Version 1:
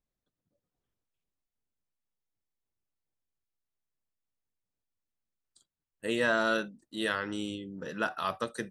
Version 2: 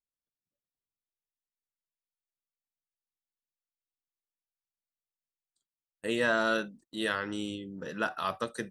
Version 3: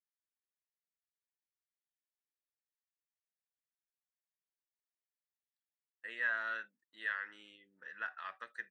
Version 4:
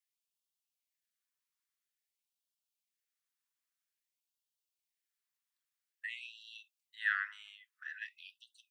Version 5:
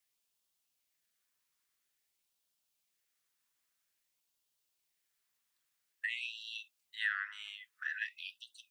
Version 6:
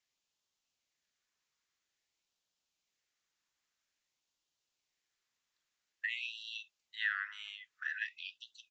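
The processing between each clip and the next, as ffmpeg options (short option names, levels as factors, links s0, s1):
-af "agate=range=0.141:threshold=0.00224:ratio=16:detection=peak"
-af "bandpass=f=1800:t=q:w=4.9:csg=0"
-af "afftfilt=real='re*gte(b*sr/1024,860*pow(2700/860,0.5+0.5*sin(2*PI*0.5*pts/sr)))':imag='im*gte(b*sr/1024,860*pow(2700/860,0.5+0.5*sin(2*PI*0.5*pts/sr)))':win_size=1024:overlap=0.75,volume=1.78"
-af "acompressor=threshold=0.00891:ratio=4,volume=2.51"
-af "aresample=16000,aresample=44100"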